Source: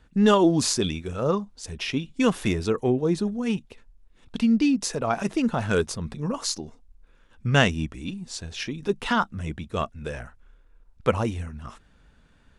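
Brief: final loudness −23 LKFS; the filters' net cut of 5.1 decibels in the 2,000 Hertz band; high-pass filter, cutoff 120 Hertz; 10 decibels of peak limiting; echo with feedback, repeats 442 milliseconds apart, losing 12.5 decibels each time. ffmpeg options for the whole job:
ffmpeg -i in.wav -af "highpass=120,equalizer=frequency=2000:width_type=o:gain=-7.5,alimiter=limit=-17.5dB:level=0:latency=1,aecho=1:1:442|884|1326:0.237|0.0569|0.0137,volume=6.5dB" out.wav

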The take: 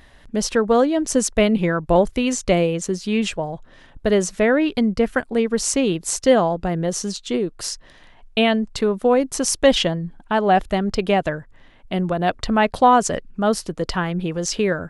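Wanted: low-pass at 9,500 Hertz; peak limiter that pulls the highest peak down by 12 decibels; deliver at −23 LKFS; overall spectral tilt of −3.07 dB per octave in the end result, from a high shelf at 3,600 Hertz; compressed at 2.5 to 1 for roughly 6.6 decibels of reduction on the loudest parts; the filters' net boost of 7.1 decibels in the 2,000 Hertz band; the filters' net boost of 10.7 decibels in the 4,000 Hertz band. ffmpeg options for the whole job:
ffmpeg -i in.wav -af "lowpass=9500,equalizer=frequency=2000:width_type=o:gain=4.5,highshelf=frequency=3600:gain=8.5,equalizer=frequency=4000:width_type=o:gain=7.5,acompressor=threshold=-17dB:ratio=2.5,volume=-1dB,alimiter=limit=-11.5dB:level=0:latency=1" out.wav

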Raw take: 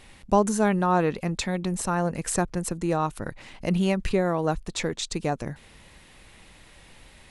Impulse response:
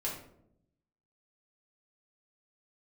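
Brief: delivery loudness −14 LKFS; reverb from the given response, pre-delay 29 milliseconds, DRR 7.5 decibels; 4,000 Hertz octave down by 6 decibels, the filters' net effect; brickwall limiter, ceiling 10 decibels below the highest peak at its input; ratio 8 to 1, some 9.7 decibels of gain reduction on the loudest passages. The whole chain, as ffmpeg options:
-filter_complex "[0:a]equalizer=frequency=4000:width_type=o:gain=-7.5,acompressor=threshold=-25dB:ratio=8,alimiter=limit=-24dB:level=0:latency=1,asplit=2[link_01][link_02];[1:a]atrim=start_sample=2205,adelay=29[link_03];[link_02][link_03]afir=irnorm=-1:irlink=0,volume=-10.5dB[link_04];[link_01][link_04]amix=inputs=2:normalize=0,volume=20dB"

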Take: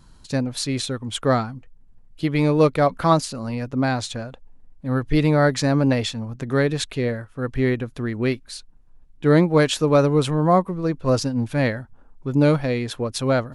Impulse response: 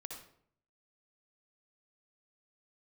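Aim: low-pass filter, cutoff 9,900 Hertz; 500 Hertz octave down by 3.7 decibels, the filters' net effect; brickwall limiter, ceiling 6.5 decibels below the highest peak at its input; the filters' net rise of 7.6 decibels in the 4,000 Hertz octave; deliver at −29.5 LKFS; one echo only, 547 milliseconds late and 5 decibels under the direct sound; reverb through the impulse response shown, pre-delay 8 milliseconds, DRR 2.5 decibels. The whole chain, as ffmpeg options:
-filter_complex "[0:a]lowpass=9900,equalizer=frequency=500:width_type=o:gain=-4.5,equalizer=frequency=4000:width_type=o:gain=9,alimiter=limit=-11.5dB:level=0:latency=1,aecho=1:1:547:0.562,asplit=2[link_01][link_02];[1:a]atrim=start_sample=2205,adelay=8[link_03];[link_02][link_03]afir=irnorm=-1:irlink=0,volume=0.5dB[link_04];[link_01][link_04]amix=inputs=2:normalize=0,volume=-9dB"

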